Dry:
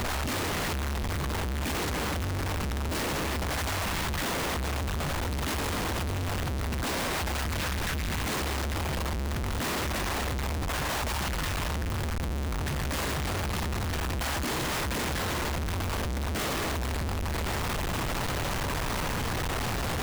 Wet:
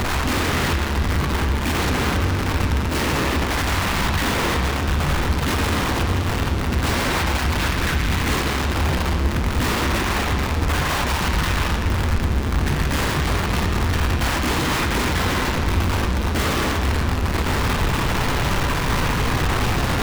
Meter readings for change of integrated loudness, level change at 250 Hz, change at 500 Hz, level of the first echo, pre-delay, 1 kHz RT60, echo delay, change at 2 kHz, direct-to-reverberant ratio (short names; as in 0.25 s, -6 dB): +9.5 dB, +10.5 dB, +8.0 dB, none, 19 ms, 1.8 s, none, +9.5 dB, 2.5 dB